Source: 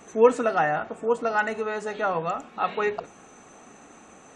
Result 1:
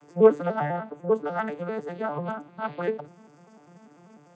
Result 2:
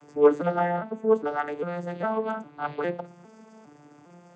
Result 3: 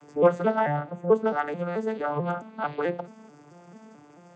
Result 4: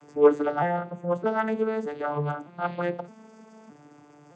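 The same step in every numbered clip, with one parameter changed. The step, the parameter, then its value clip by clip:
arpeggiated vocoder, a note every: 99, 405, 219, 615 ms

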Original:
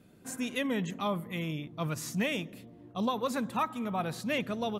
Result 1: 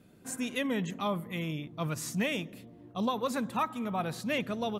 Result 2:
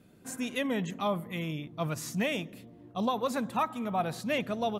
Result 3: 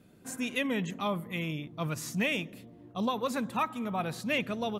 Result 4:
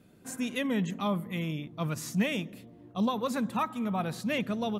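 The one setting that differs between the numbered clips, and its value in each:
dynamic EQ, frequency: 8500, 700, 2500, 200 Hz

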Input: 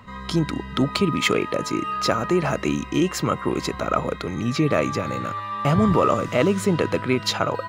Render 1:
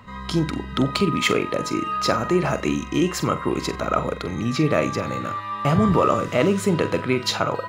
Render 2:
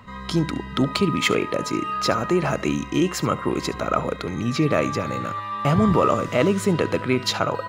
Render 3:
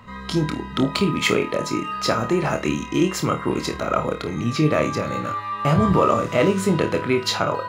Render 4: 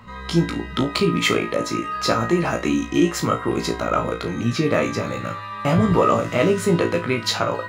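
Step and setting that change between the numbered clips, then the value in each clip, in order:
flutter echo, walls apart: 7.7, 12.1, 4.5, 3 m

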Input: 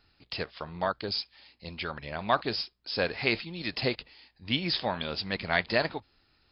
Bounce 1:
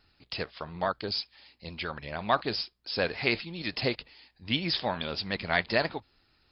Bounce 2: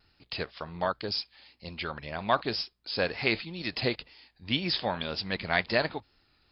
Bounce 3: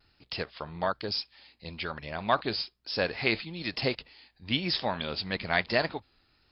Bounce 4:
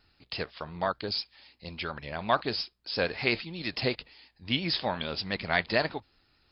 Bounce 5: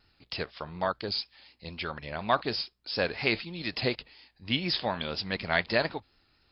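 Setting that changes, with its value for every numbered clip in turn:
vibrato, rate: 13, 2, 1.1, 8.5, 4.1 Hz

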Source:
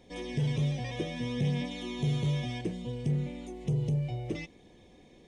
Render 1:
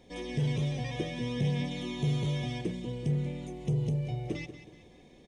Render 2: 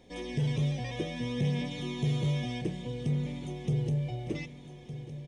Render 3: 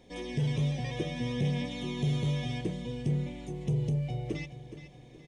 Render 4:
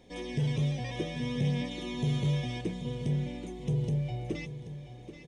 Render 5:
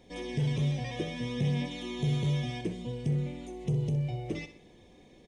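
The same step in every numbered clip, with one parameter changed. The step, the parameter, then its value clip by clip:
feedback echo, time: 186, 1210, 420, 781, 63 ms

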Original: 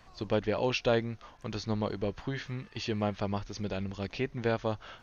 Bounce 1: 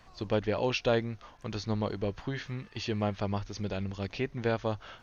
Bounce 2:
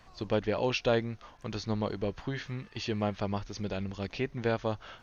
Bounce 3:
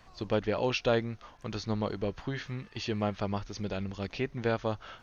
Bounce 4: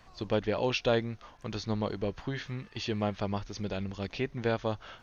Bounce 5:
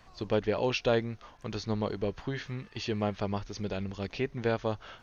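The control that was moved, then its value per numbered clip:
dynamic EQ, frequency: 100, 9200, 1300, 3500, 420 Hz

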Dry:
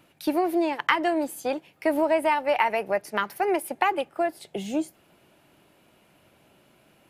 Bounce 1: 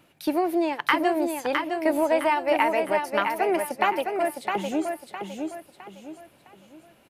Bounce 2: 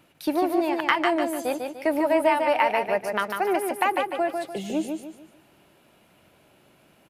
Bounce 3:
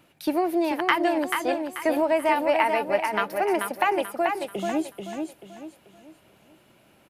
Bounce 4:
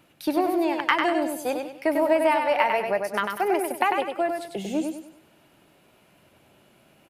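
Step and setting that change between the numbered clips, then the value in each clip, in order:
feedback echo, time: 660, 148, 436, 98 ms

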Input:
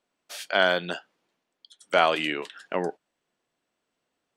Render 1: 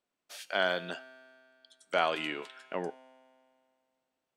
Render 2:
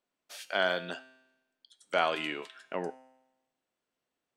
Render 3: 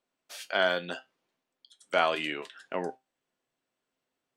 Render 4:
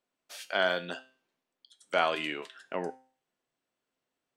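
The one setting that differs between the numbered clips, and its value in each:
resonator, decay: 2.2, 0.95, 0.19, 0.43 s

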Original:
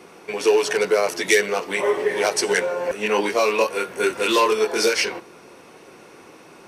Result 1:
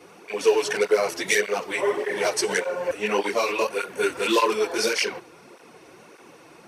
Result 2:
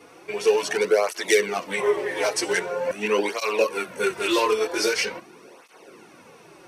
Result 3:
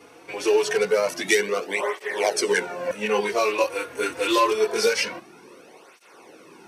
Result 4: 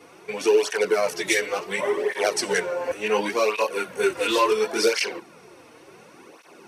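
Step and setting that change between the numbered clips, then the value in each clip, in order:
tape flanging out of phase, nulls at: 1.7, 0.44, 0.25, 0.7 Hz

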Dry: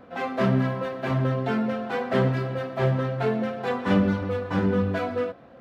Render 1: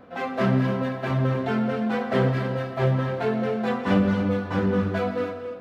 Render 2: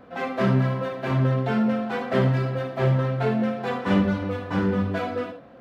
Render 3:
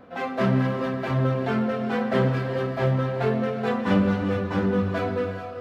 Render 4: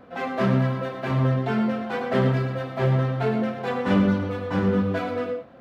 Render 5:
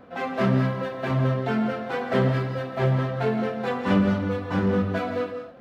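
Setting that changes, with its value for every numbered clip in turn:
non-linear reverb, gate: 320, 90, 470, 140, 220 ms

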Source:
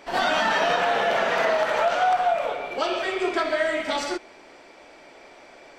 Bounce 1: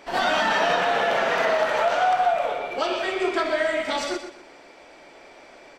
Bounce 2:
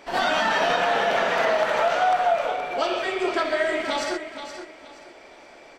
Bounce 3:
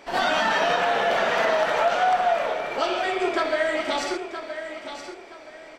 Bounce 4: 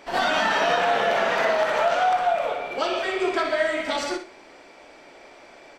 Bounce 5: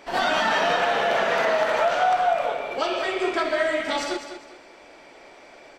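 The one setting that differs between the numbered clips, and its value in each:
feedback echo, time: 123, 473, 971, 60, 202 ms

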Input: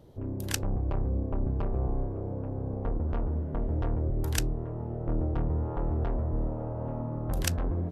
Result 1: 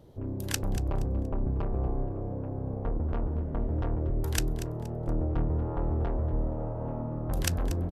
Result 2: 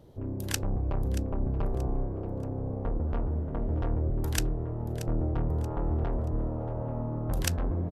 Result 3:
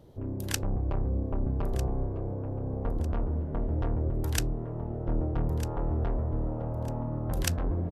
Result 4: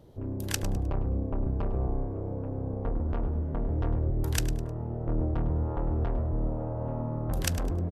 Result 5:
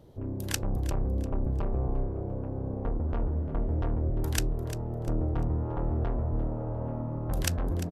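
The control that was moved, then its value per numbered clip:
feedback echo, time: 0.236, 0.63, 1.25, 0.103, 0.348 s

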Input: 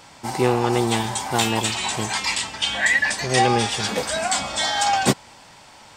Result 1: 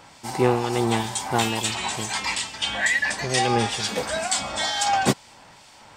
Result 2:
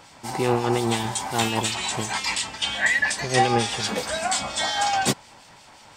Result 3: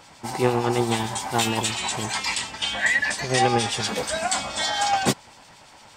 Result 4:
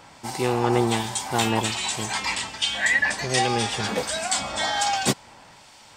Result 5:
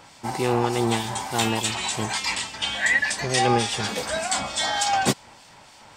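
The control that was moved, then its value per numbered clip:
harmonic tremolo, rate: 2.2, 5.6, 8.7, 1.3, 3.4 Hz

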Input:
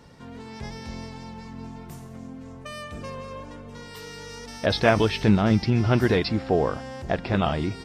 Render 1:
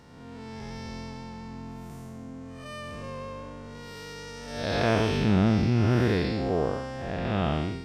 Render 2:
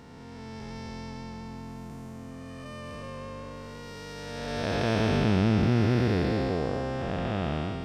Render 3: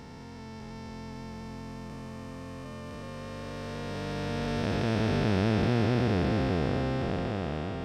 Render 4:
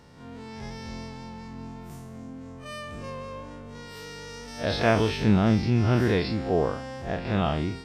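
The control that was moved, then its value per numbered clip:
time blur, width: 235, 632, 1800, 89 ms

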